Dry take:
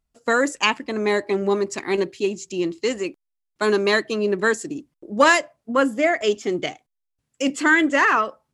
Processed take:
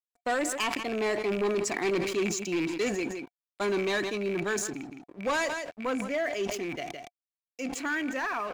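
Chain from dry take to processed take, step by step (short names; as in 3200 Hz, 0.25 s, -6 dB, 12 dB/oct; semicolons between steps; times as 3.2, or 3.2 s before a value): rattling part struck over -32 dBFS, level -21 dBFS; Doppler pass-by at 1.84, 18 m/s, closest 16 m; vocal rider within 4 dB 2 s; crossover distortion -52 dBFS; small resonant body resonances 710/2300 Hz, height 10 dB; soft clip -23 dBFS, distortion -12 dB; echo 0.164 s -21 dB; sustainer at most 41 dB/s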